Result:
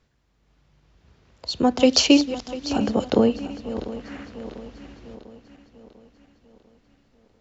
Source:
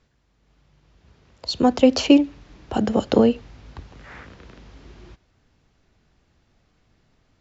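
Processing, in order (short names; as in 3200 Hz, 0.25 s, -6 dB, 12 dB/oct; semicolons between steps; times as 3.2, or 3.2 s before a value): regenerating reverse delay 0.348 s, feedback 70%, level -13 dB; 1.8–2.73 bell 5500 Hz +11.5 dB 1.8 oct; gain -2 dB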